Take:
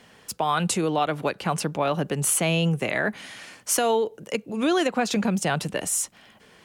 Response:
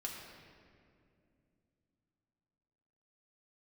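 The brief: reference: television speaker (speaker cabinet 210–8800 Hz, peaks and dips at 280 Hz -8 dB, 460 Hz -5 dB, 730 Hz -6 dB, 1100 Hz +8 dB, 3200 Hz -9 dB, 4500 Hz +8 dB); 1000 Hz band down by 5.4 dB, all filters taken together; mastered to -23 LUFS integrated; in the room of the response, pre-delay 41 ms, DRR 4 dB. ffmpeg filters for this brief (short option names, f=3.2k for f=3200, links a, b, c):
-filter_complex "[0:a]equalizer=f=1k:t=o:g=-8,asplit=2[a][b];[1:a]atrim=start_sample=2205,adelay=41[c];[b][c]afir=irnorm=-1:irlink=0,volume=-3.5dB[d];[a][d]amix=inputs=2:normalize=0,highpass=f=210:w=0.5412,highpass=f=210:w=1.3066,equalizer=f=280:t=q:w=4:g=-8,equalizer=f=460:t=q:w=4:g=-5,equalizer=f=730:t=q:w=4:g=-6,equalizer=f=1.1k:t=q:w=4:g=8,equalizer=f=3.2k:t=q:w=4:g=-9,equalizer=f=4.5k:t=q:w=4:g=8,lowpass=f=8.8k:w=0.5412,lowpass=f=8.8k:w=1.3066,volume=5dB"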